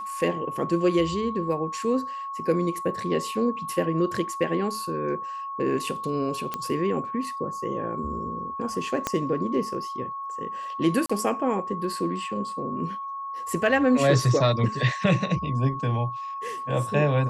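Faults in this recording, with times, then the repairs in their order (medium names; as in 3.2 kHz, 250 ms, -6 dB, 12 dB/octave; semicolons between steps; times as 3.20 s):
whine 1.1 kHz -31 dBFS
6.54 s: pop -14 dBFS
9.07 s: pop -10 dBFS
11.06–11.10 s: dropout 35 ms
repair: de-click; band-stop 1.1 kHz, Q 30; interpolate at 11.06 s, 35 ms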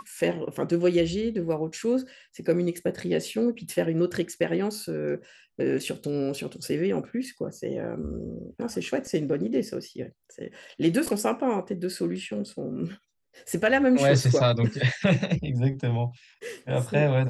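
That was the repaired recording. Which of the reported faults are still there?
9.07 s: pop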